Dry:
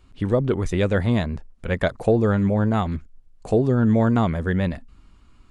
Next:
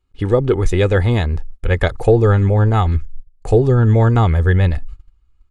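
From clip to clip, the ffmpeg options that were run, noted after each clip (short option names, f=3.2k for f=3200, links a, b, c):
-af "agate=range=-22dB:threshold=-44dB:ratio=16:detection=peak,asubboost=boost=4:cutoff=110,aecho=1:1:2.4:0.47,volume=5dB"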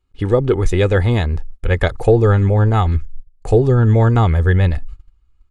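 -af anull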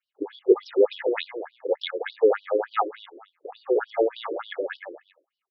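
-af "aecho=1:1:229|458:0.376|0.0564,afftfilt=real='re*between(b*sr/1024,400*pow(4200/400,0.5+0.5*sin(2*PI*3.4*pts/sr))/1.41,400*pow(4200/400,0.5+0.5*sin(2*PI*3.4*pts/sr))*1.41)':imag='im*between(b*sr/1024,400*pow(4200/400,0.5+0.5*sin(2*PI*3.4*pts/sr))/1.41,400*pow(4200/400,0.5+0.5*sin(2*PI*3.4*pts/sr))*1.41)':win_size=1024:overlap=0.75"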